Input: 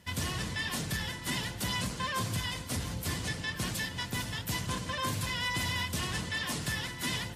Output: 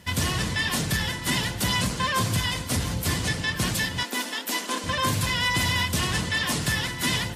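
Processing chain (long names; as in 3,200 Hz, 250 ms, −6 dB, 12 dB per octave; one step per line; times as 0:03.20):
0:04.03–0:04.84: elliptic high-pass filter 240 Hz, stop band 50 dB
level +8.5 dB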